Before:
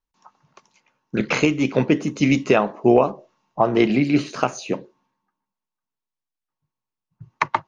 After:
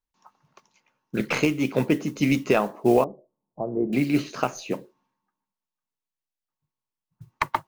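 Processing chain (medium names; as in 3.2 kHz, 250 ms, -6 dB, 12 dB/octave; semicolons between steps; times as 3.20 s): tracing distortion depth 0.028 ms; modulation noise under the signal 27 dB; 3.04–3.93 s: four-pole ladder low-pass 740 Hz, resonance 20%; trim -4 dB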